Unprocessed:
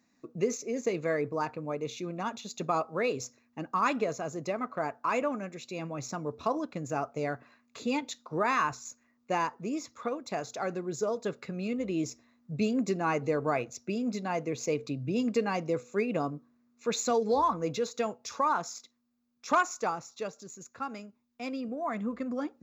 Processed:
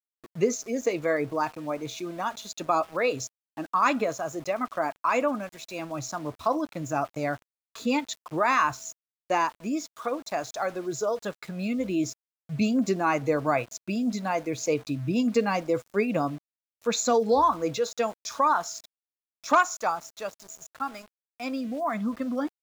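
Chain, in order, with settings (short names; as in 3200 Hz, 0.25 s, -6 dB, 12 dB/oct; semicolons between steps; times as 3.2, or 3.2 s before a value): spectral noise reduction 9 dB; whine 650 Hz -62 dBFS; sample gate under -49.5 dBFS; gain +5 dB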